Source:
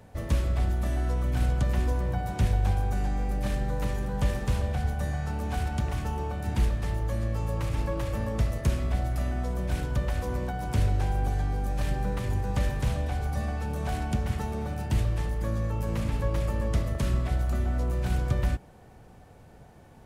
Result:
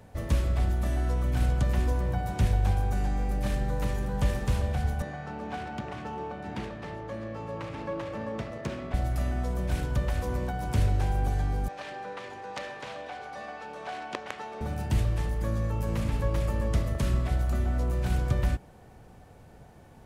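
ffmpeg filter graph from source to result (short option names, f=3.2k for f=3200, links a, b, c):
-filter_complex "[0:a]asettb=1/sr,asplit=3[a][b][c];[a]atrim=end=5.024[d];[b]atrim=start=5.02:end=8.94,asetpts=PTS-STARTPTS,afade=t=in:d=0.004:c=qsin,afade=t=out:st=3.916:d=0.004:c=qsin,highpass=200,adynamicsmooth=sensitivity=6:basefreq=3.1k[e];[c]atrim=start=8.936[f];[d][e]acrossfade=d=0.004:c1=hsin:c2=qsin[g];[g][f]acrossfade=d=0.004:c1=qsin:c2=hsin,asettb=1/sr,asplit=3[h][i][j];[h]atrim=end=11.684[k];[i]atrim=start=11.68:end=14.61,asetpts=PTS-STARTPTS,afade=t=in:d=0.004:c=qsin,afade=t=out:st=2.926:d=0.004:c=qsin,aeval=exprs='(mod(6.68*val(0)+1,2)-1)/6.68':c=same,highpass=510,lowpass=4.4k[l];[j]atrim=start=14.606[m];[k][l]acrossfade=d=0.004:c1=hsin:c2=qsin[n];[n][m]acrossfade=d=0.004:c1=qsin:c2=hsin"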